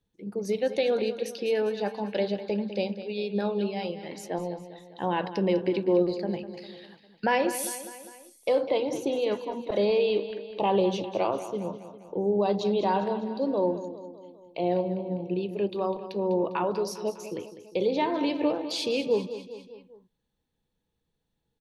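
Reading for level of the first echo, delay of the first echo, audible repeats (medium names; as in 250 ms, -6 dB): -12.5 dB, 201 ms, 4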